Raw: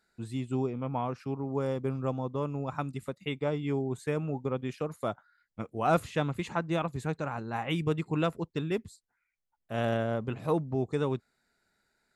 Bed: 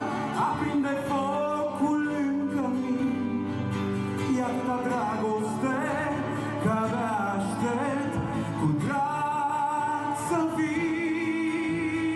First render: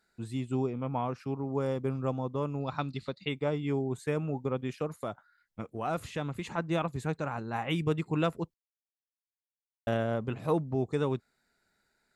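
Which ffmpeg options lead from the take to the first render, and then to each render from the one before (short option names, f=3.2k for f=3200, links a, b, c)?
-filter_complex "[0:a]asplit=3[a][b][c];[a]afade=t=out:st=2.59:d=0.02[d];[b]lowpass=f=4.3k:t=q:w=7.8,afade=t=in:st=2.59:d=0.02,afade=t=out:st=3.27:d=0.02[e];[c]afade=t=in:st=3.27:d=0.02[f];[d][e][f]amix=inputs=3:normalize=0,asplit=3[g][h][i];[g]afade=t=out:st=4.98:d=0.02[j];[h]acompressor=threshold=-33dB:ratio=2:attack=3.2:release=140:knee=1:detection=peak,afade=t=in:st=4.98:d=0.02,afade=t=out:st=6.57:d=0.02[k];[i]afade=t=in:st=6.57:d=0.02[l];[j][k][l]amix=inputs=3:normalize=0,asplit=3[m][n][o];[m]atrim=end=8.54,asetpts=PTS-STARTPTS,afade=t=out:st=8.536:d=0.004:c=hsin[p];[n]atrim=start=8.54:end=9.87,asetpts=PTS-STARTPTS,volume=0[q];[o]atrim=start=9.87,asetpts=PTS-STARTPTS,afade=t=in:d=0.004:c=hsin[r];[p][q][r]concat=n=3:v=0:a=1"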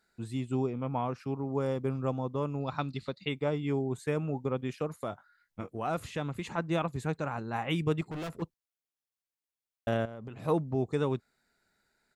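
-filter_complex "[0:a]asplit=3[a][b][c];[a]afade=t=out:st=5.11:d=0.02[d];[b]asplit=2[e][f];[f]adelay=21,volume=-7dB[g];[e][g]amix=inputs=2:normalize=0,afade=t=in:st=5.11:d=0.02,afade=t=out:st=5.69:d=0.02[h];[c]afade=t=in:st=5.69:d=0.02[i];[d][h][i]amix=inputs=3:normalize=0,asettb=1/sr,asplit=3[j][k][l];[j]atrim=end=8.014[m];[k]atrim=start=8.01:end=8.42,asetpts=PTS-STARTPTS,afade=t=in:d=0.004:c=qsin,afade=t=out:st=0.406:d=0.004:c=qsin,asoftclip=type=hard:threshold=-35.5dB[n];[l]atrim=start=8.416[o];[m][n]acrossfade=d=0.004:c1=hsin:c2=qsin[p];[p][o]acrossfade=d=0.004:c1=qsin:c2=hsin,asettb=1/sr,asplit=3[q][r][s];[q]atrim=end=10.054[t];[r]atrim=start=10.05:end=10.46,asetpts=PTS-STARTPTS,afade=t=in:d=0.004:c=qsin,afade=t=out:st=0.406:d=0.004:c=qsin,acompressor=threshold=-38dB:ratio=16:attack=3.2:release=140:knee=1:detection=peak[u];[s]atrim=start=10.456[v];[t][u]acrossfade=d=0.004:c1=hsin:c2=qsin[w];[w][v]acrossfade=d=0.004:c1=qsin:c2=hsin"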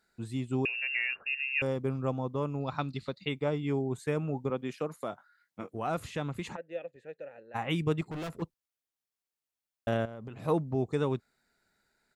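-filter_complex "[0:a]asettb=1/sr,asplit=3[a][b][c];[a]atrim=end=0.654[d];[b]atrim=start=0.65:end=1.62,asetpts=PTS-STARTPTS,afade=t=in:d=0.004:c=qsin,afade=t=out:st=0.966:d=0.004:c=qsin,lowpass=f=2.5k:t=q:w=0.5098,lowpass=f=2.5k:t=q:w=0.6013,lowpass=f=2.5k:t=q:w=0.9,lowpass=f=2.5k:t=q:w=2.563,afreqshift=-2900[e];[c]atrim=start=1.616[f];[d][e]acrossfade=d=0.004:c1=hsin:c2=qsin[g];[g][f]acrossfade=d=0.004:c1=qsin:c2=hsin,asettb=1/sr,asplit=3[h][i][j];[h]atrim=end=4.504[k];[i]atrim=start=4.5:end=5.74,asetpts=PTS-STARTPTS,afade=t=in:d=0.004:c=qsin,afade=t=out:st=1.236:d=0.004:c=qsin,highpass=170[l];[j]atrim=start=5.736[m];[k][l]acrossfade=d=0.004:c1=hsin:c2=qsin[n];[n][m]acrossfade=d=0.004:c1=qsin:c2=hsin,asplit=3[o][p][q];[o]afade=t=out:st=6.55:d=0.02[r];[p]asplit=3[s][t][u];[s]bandpass=f=530:t=q:w=8,volume=0dB[v];[t]bandpass=f=1.84k:t=q:w=8,volume=-6dB[w];[u]bandpass=f=2.48k:t=q:w=8,volume=-9dB[x];[v][w][x]amix=inputs=3:normalize=0,afade=t=in:st=6.55:d=0.02,afade=t=out:st=7.54:d=0.02[y];[q]afade=t=in:st=7.54:d=0.02[z];[r][y][z]amix=inputs=3:normalize=0"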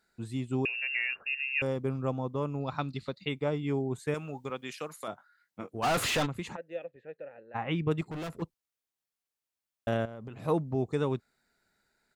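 -filter_complex "[0:a]asettb=1/sr,asplit=3[a][b][c];[a]atrim=end=4.144[d];[b]atrim=start=4.14:end=5.08,asetpts=PTS-STARTPTS,afade=t=in:d=0.004:c=qsin,afade=t=out:st=0.936:d=0.004:c=qsin,tiltshelf=f=1.1k:g=-8[e];[c]atrim=start=5.076[f];[d][e]acrossfade=d=0.004:c1=hsin:c2=qsin[g];[g][f]acrossfade=d=0.004:c1=qsin:c2=hsin,asplit=3[h][i][j];[h]afade=t=out:st=5.82:d=0.02[k];[i]asplit=2[l][m];[m]highpass=f=720:p=1,volume=33dB,asoftclip=type=tanh:threshold=-21dB[n];[l][n]amix=inputs=2:normalize=0,lowpass=f=5.6k:p=1,volume=-6dB,afade=t=in:st=5.82:d=0.02,afade=t=out:st=6.25:d=0.02[o];[j]afade=t=in:st=6.25:d=0.02[p];[k][o][p]amix=inputs=3:normalize=0,asplit=3[q][r][s];[q]afade=t=out:st=6.84:d=0.02[t];[r]lowpass=2.9k,afade=t=in:st=6.84:d=0.02,afade=t=out:st=7.9:d=0.02[u];[s]afade=t=in:st=7.9:d=0.02[v];[t][u][v]amix=inputs=3:normalize=0"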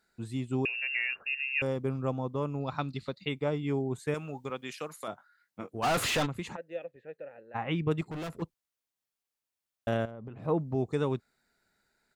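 -filter_complex "[0:a]asplit=3[a][b][c];[a]afade=t=out:st=10.1:d=0.02[d];[b]lowpass=f=1.2k:p=1,afade=t=in:st=10.1:d=0.02,afade=t=out:st=10.58:d=0.02[e];[c]afade=t=in:st=10.58:d=0.02[f];[d][e][f]amix=inputs=3:normalize=0"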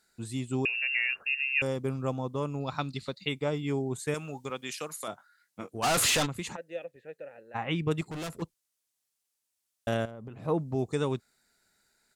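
-af "equalizer=f=8.8k:w=0.44:g=10.5"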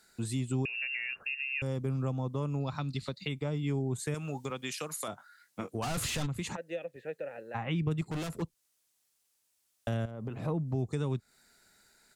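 -filter_complex "[0:a]acrossover=split=190[a][b];[b]acompressor=threshold=-40dB:ratio=4[c];[a][c]amix=inputs=2:normalize=0,asplit=2[d][e];[e]alimiter=level_in=10.5dB:limit=-24dB:level=0:latency=1:release=239,volume=-10.5dB,volume=1dB[f];[d][f]amix=inputs=2:normalize=0"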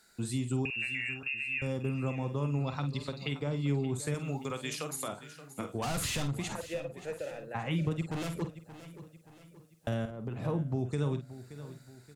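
-filter_complex "[0:a]asplit=2[a][b];[b]adelay=49,volume=-9.5dB[c];[a][c]amix=inputs=2:normalize=0,aecho=1:1:576|1152|1728|2304:0.188|0.0848|0.0381|0.0172"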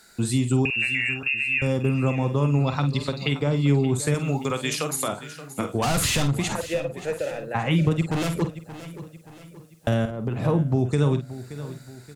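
-af "volume=10.5dB"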